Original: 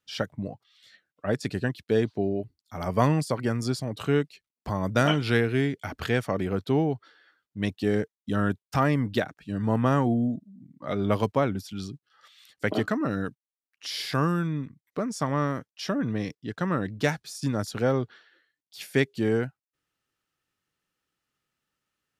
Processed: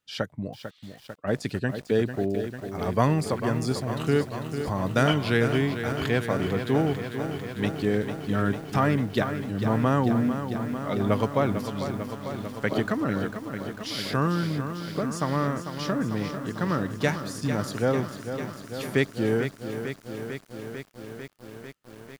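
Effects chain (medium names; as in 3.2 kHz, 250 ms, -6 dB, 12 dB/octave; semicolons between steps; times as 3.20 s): band-stop 5.5 kHz, Q 18; bit-crushed delay 447 ms, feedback 80%, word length 8-bit, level -9 dB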